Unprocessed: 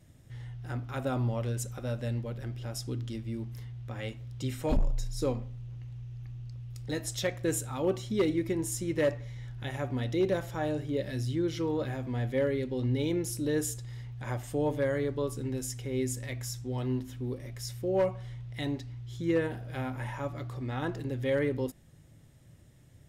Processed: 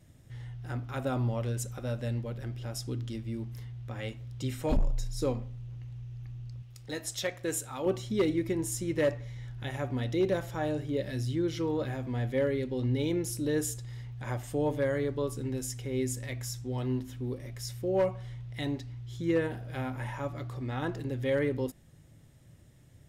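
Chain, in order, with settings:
0:06.62–0:07.86: low-shelf EQ 290 Hz −9.5 dB

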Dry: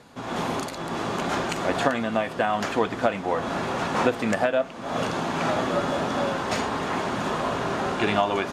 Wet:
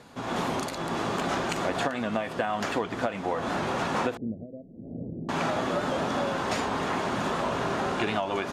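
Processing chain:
downward compressor, threshold −24 dBFS, peak gain reduction 9 dB
0:04.17–0:05.29: Gaussian smoothing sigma 24 samples
wow of a warped record 78 rpm, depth 100 cents

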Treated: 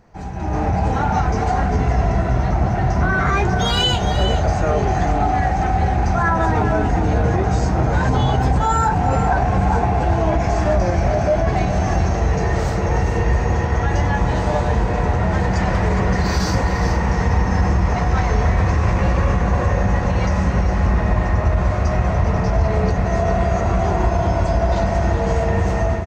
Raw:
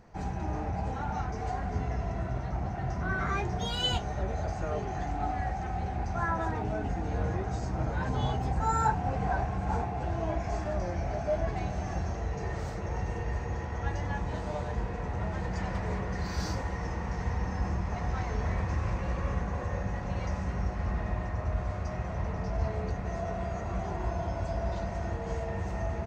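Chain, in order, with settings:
brickwall limiter −24.5 dBFS, peak gain reduction 9.5 dB
automatic gain control gain up to 12.5 dB
on a send: single-tap delay 414 ms −9.5 dB
on the sum: level +3 dB

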